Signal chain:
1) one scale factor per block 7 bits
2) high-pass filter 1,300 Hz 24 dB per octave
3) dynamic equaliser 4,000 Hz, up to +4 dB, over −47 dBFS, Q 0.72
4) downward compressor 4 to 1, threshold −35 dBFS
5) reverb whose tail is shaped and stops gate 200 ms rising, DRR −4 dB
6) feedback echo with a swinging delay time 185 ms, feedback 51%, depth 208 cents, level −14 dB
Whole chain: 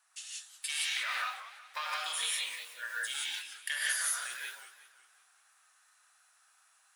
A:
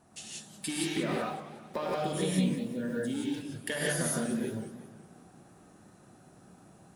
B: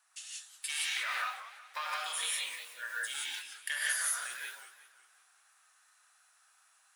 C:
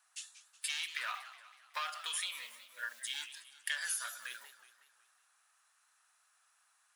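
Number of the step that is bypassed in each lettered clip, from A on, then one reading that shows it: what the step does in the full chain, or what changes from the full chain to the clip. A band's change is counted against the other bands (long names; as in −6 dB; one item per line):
2, 500 Hz band +26.0 dB
3, 4 kHz band −2.0 dB
5, change in integrated loudness −5.0 LU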